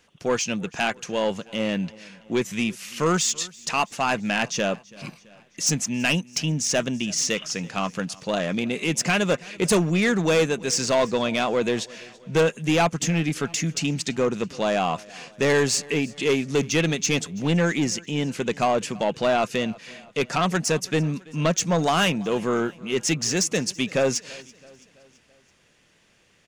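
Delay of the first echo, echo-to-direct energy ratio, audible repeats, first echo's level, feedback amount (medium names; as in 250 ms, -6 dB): 332 ms, -21.5 dB, 3, -23.0 dB, 53%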